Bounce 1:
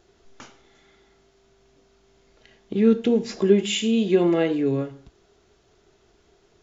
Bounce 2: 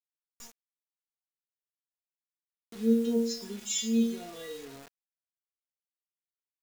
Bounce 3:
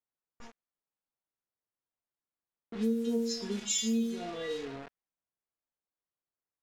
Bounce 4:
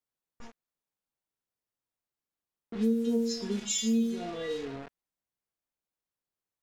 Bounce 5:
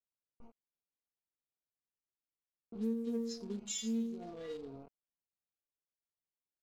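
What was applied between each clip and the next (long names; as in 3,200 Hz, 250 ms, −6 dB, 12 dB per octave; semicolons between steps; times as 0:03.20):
high shelf with overshoot 3,900 Hz +14 dB, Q 1.5; stiff-string resonator 230 Hz, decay 0.47 s, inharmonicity 0.002; bit reduction 8 bits
downward compressor 6 to 1, threshold −33 dBFS, peak gain reduction 13.5 dB; low-pass that shuts in the quiet parts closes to 1,300 Hz, open at −32 dBFS; level +5.5 dB
low-shelf EQ 460 Hz +4 dB
adaptive Wiener filter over 25 samples; level −8.5 dB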